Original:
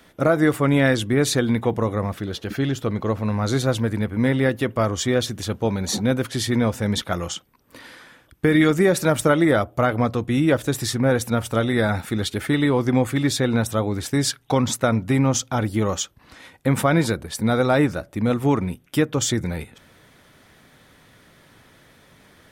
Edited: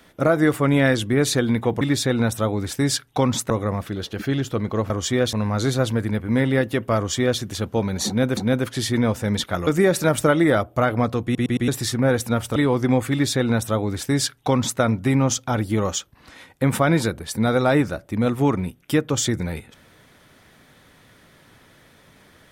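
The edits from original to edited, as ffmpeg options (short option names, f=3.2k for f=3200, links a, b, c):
-filter_complex "[0:a]asplit=12[a][b][c][d][e][f][g][h][i][j][k][l];[a]atrim=end=1.812[m];[b]atrim=start=13.148:end=14.842[n];[c]atrim=start=1.808:end=3.212[o];[d]atrim=start=4.848:end=5.282[p];[e]atrim=start=3.208:end=6.252[q];[f]atrim=start=5.948:end=7.252[r];[g]atrim=start=8.678:end=10.362[s];[h]atrim=start=10.248:end=10.362[t];[i]atrim=start=10.248:end=10.362[u];[j]atrim=start=10.248:end=10.362[v];[k]atrim=start=10.688:end=11.572[w];[l]atrim=start=12.598[x];[m][n]acrossfade=d=0.004:c1=hsin:c2=hsin[y];[y][o]acrossfade=d=0.004:c1=hsin:c2=hsin[z];[z][p]acrossfade=d=0.004:c1=hsin:c2=hsin[aa];[aa][q]acrossfade=d=0.004:c1=hsin:c2=hsin[ab];[ab][r]acrossfade=d=0.004:c1=hsin:c2=hsin[ac];[ac][s]acrossfade=d=0.004:c1=hsin:c2=hsin[ad];[ad][t]acrossfade=d=0.004:c1=hsin:c2=hsin[ae];[ae][u]acrossfade=d=0.004:c1=hsin:c2=hsin[af];[af][v]acrossfade=d=0.004:c1=hsin:c2=hsin[ag];[ag][w]acrossfade=d=0.004:c1=hsin:c2=hsin[ah];[ah][x]acrossfade=d=0.004:c1=hsin:c2=hsin"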